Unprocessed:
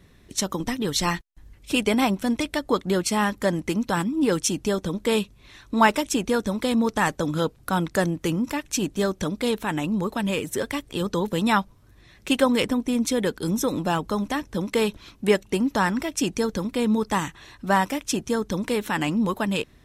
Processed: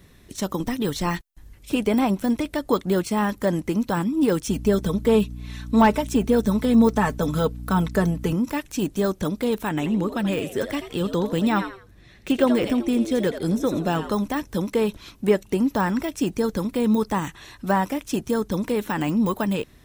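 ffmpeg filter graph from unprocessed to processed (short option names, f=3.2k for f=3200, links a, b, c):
-filter_complex "[0:a]asettb=1/sr,asplit=3[a][b][c];[a]atrim=end=4.484[d];[b]atrim=start=4.48:end=8.33,asetpts=PTS-STARTPTS,afade=t=in:d=0.004:c=qsin,afade=t=out:st=3.846:d=0.004:c=qsin,aecho=1:1:4.6:0.66,atrim=end_sample=169785,aeval=exprs='val(0)+0.0178*(sin(2*PI*60*n/s)+sin(2*PI*2*60*n/s)/2+sin(2*PI*3*60*n/s)/3+sin(2*PI*4*60*n/s)/4+sin(2*PI*5*60*n/s)/5)':c=same[e];[c]atrim=start=8.326[f];[d][e]acrossfade=d=0.004:c1=hsin:c2=qsin[g];[g][f]acrossfade=d=0.004:c1=qsin:c2=hsin,asettb=1/sr,asplit=3[h][i][j];[h]atrim=end=9.694[k];[i]atrim=start=9.69:end=14.12,asetpts=PTS-STARTPTS,afade=t=in:d=0.004:c=qsin,afade=t=out:st=4.426:d=0.004:c=qsin,lowpass=f=3.7k:p=1,equalizer=f=1k:t=o:w=0.55:g=-4.5,asplit=4[l][m][n][o];[m]adelay=83,afreqshift=95,volume=-12dB[p];[n]adelay=166,afreqshift=190,volume=-22.2dB[q];[o]adelay=249,afreqshift=285,volume=-32.3dB[r];[l][p][q][r]amix=inputs=4:normalize=0,atrim=end_sample=195363[s];[j]atrim=start=14.116[t];[k][s]acrossfade=d=0.004:c1=hsin:c2=qsin[u];[u][t]acrossfade=d=0.004:c1=qsin:c2=hsin,deesser=1,highshelf=f=8.7k:g=8.5,volume=2dB"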